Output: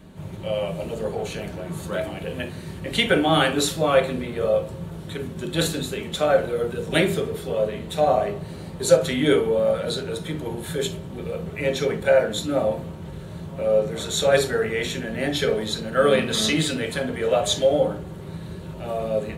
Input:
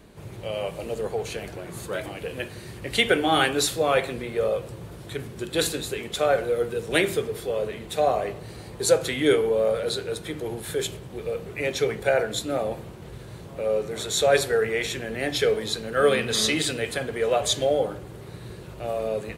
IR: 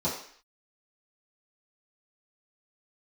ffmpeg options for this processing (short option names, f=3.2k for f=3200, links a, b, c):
-filter_complex "[0:a]asplit=2[a][b];[1:a]atrim=start_sample=2205,atrim=end_sample=3087[c];[b][c]afir=irnorm=-1:irlink=0,volume=-10.5dB[d];[a][d]amix=inputs=2:normalize=0"